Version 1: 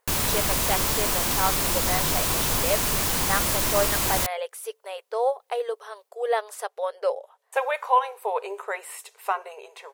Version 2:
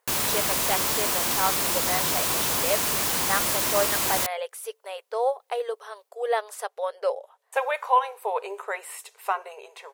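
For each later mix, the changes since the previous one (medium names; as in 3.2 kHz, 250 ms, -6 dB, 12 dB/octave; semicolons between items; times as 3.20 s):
master: add high-pass 250 Hz 6 dB/octave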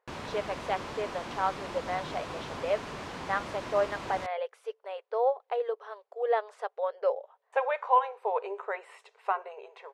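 background -6.0 dB; master: add tape spacing loss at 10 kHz 30 dB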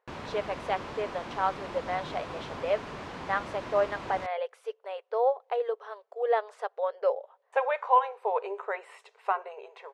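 speech: send +11.0 dB; background: add treble shelf 5.4 kHz -9 dB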